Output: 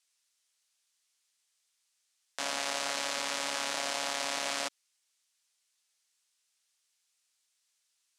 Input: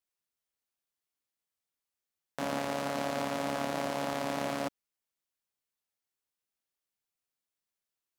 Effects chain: weighting filter ITU-R 468; limiter -19.5 dBFS, peak gain reduction 8.5 dB; 2.91–3.77 notch 710 Hz, Q 17; gain +5 dB

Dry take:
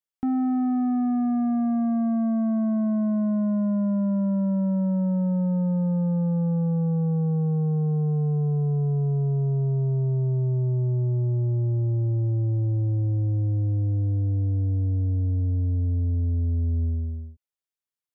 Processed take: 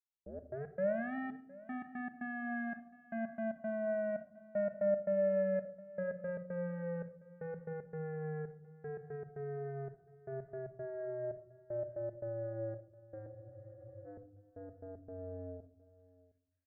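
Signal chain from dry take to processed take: tape start at the beginning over 1.26 s; reverb removal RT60 0.62 s; soft clip -27.5 dBFS, distortion -20 dB; double band-pass 910 Hz, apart 1.5 oct; step gate "..x.x.xxxx." 106 bpm -60 dB; on a send: echo 0.775 s -20.5 dB; on the sum: shoebox room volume 2000 m³, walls furnished, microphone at 1.1 m; speed mistake 44.1 kHz file played as 48 kHz; spectral freeze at 13.35, 0.70 s; gain +8.5 dB

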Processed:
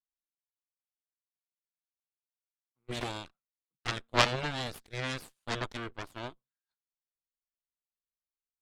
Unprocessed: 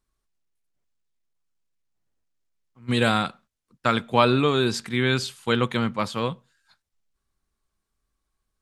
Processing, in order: 3–3.88 envelope flanger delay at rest 7.2 ms, full sweep at -17.5 dBFS; added harmonics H 3 -11 dB, 4 -15 dB, 7 -32 dB, 8 -42 dB, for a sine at -3 dBFS

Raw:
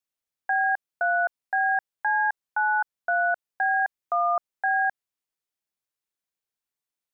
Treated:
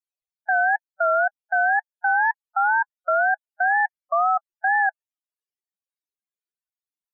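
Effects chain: wow and flutter 130 cents; loudest bins only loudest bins 16; gain +3.5 dB

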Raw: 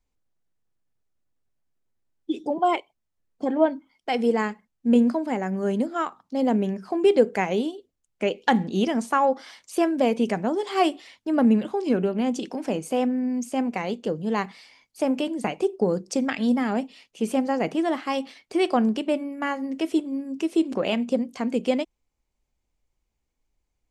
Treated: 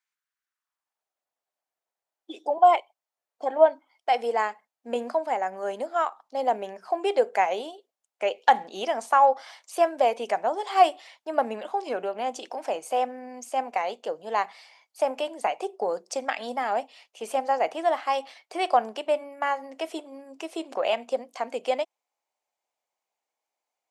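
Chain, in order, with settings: high-pass sweep 1500 Hz -> 700 Hz, 0.44–1.07; gain -2 dB

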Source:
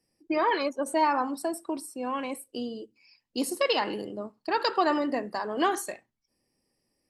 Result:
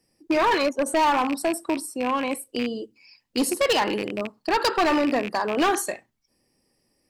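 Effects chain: rattling part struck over -39 dBFS, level -27 dBFS; hard clip -23.5 dBFS, distortion -10 dB; gain +7 dB

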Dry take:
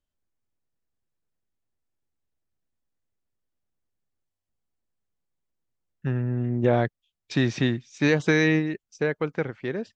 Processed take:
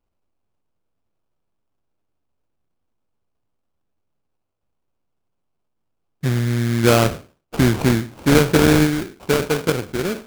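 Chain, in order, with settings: spectral trails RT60 0.34 s; varispeed -3%; sample-rate reducer 1900 Hz, jitter 20%; gain +6.5 dB

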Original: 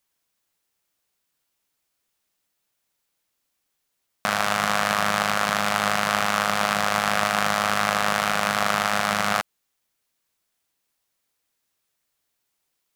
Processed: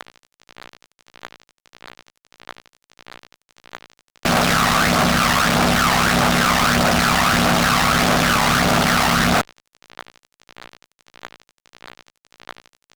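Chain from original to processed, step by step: CVSD 32 kbps; AGC gain up to 8.5 dB; buzz 120 Hz, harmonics 21, -47 dBFS -4 dB/oct; phaser 1.6 Hz, delay 1.1 ms, feedback 55%; ring modulator 33 Hz; fuzz box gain 38 dB, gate -36 dBFS; low shelf 160 Hz -3 dB

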